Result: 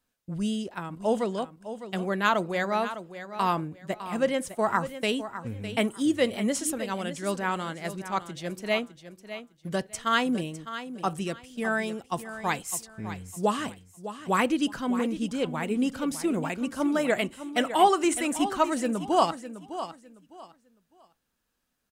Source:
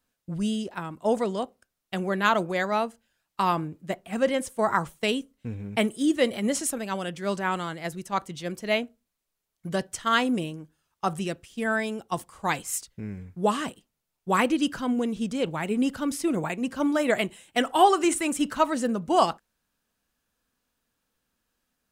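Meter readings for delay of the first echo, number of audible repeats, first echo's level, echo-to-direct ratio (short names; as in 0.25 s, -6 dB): 0.606 s, 2, -12.0 dB, -11.5 dB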